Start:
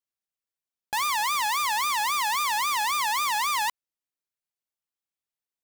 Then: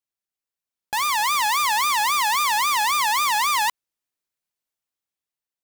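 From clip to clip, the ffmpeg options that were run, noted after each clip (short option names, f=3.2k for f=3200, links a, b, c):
-af "dynaudnorm=f=260:g=7:m=5dB"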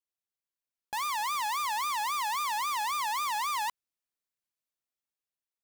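-af "asoftclip=type=tanh:threshold=-21.5dB,volume=-6.5dB"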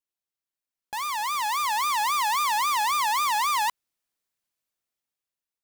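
-af "dynaudnorm=f=400:g=7:m=7dB"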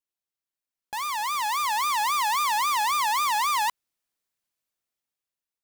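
-af anull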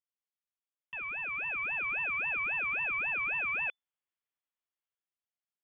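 -af "lowpass=f=3k:t=q:w=0.5098,lowpass=f=3k:t=q:w=0.6013,lowpass=f=3k:t=q:w=0.9,lowpass=f=3k:t=q:w=2.563,afreqshift=-3500,volume=-8dB"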